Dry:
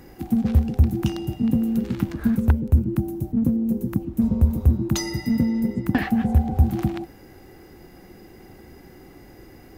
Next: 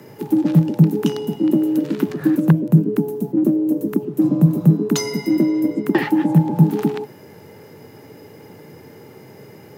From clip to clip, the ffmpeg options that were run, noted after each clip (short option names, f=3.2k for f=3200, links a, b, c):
-af "bandreject=f=2.1k:w=27,afreqshift=86,volume=4dB"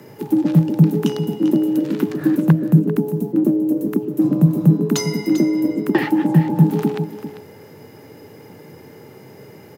-af "aecho=1:1:395:0.251"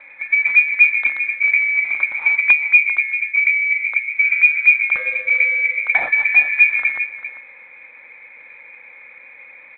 -af "lowpass=f=2.2k:t=q:w=0.5098,lowpass=f=2.2k:t=q:w=0.6013,lowpass=f=2.2k:t=q:w=0.9,lowpass=f=2.2k:t=q:w=2.563,afreqshift=-2600" -ar 8000 -c:a adpcm_g726 -b:a 32k